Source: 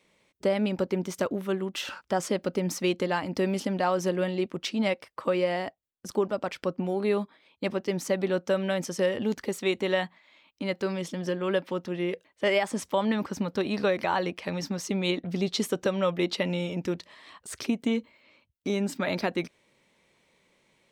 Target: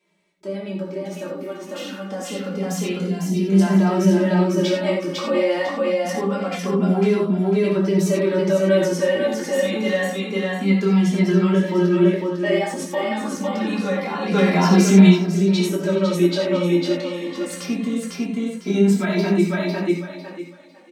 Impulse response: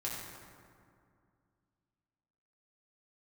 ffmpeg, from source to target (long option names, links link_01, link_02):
-filter_complex "[0:a]bandreject=frequency=60:width_type=h:width=6,bandreject=frequency=120:width_type=h:width=6,bandreject=frequency=180:width_type=h:width=6,aecho=1:1:501|1002|1503|2004:0.631|0.183|0.0531|0.0154,alimiter=limit=-21.5dB:level=0:latency=1,asettb=1/sr,asplit=3[link_01][link_02][link_03];[link_01]atrim=end=14.314[link_04];[link_02]atrim=start=14.31:end=15.07,asetpts=PTS-STARTPTS,afade=type=in:duration=0.004:curve=qsin,afade=type=out:start_time=0.756:duration=0.004:curve=qsin,acontrast=87[link_05];[link_03]atrim=start=15.066[link_06];[link_04][link_05]acrossfade=duration=0.004:curve1=hsin:curve2=qsin[link_07];[link_07][link_06]acrossfade=duration=0.004:curve1=qsin:curve2=hsin,lowshelf=frequency=150:width_type=q:width=3:gain=-7.5,dynaudnorm=framelen=490:gausssize=11:maxgain=10dB,asplit=3[link_08][link_09][link_10];[link_08]afade=type=out:start_time=2.99:duration=0.02[link_11];[link_09]equalizer=frequency=1200:width=0.66:gain=-14,afade=type=in:start_time=2.99:duration=0.02,afade=type=out:start_time=3.48:duration=0.02[link_12];[link_10]afade=type=in:start_time=3.48:duration=0.02[link_13];[link_11][link_12][link_13]amix=inputs=3:normalize=0[link_14];[1:a]atrim=start_sample=2205,afade=type=out:start_time=0.16:duration=0.01,atrim=end_sample=7497[link_15];[link_14][link_15]afir=irnorm=-1:irlink=0,asplit=2[link_16][link_17];[link_17]adelay=2.6,afreqshift=-0.26[link_18];[link_16][link_18]amix=inputs=2:normalize=1"